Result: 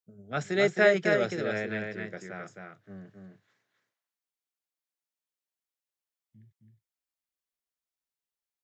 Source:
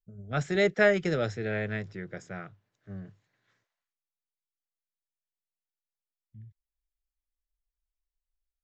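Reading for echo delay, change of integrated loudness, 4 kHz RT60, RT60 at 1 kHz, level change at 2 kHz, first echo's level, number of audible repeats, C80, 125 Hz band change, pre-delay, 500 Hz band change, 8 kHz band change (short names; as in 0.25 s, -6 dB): 0.265 s, +0.5 dB, none, none, +1.5 dB, -4.5 dB, 2, none, -4.5 dB, none, +1.5 dB, n/a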